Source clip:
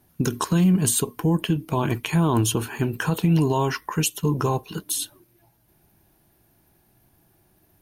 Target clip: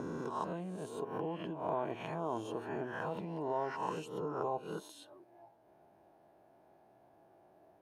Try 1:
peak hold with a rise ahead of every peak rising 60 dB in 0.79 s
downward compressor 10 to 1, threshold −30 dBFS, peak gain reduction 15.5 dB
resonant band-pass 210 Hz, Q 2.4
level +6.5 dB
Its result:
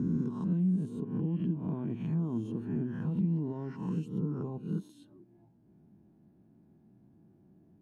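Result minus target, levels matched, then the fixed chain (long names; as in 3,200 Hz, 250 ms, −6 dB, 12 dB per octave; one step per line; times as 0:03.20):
500 Hz band −11.0 dB
peak hold with a rise ahead of every peak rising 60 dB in 0.79 s
downward compressor 10 to 1, threshold −30 dBFS, peak gain reduction 15.5 dB
resonant band-pass 640 Hz, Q 2.4
level +6.5 dB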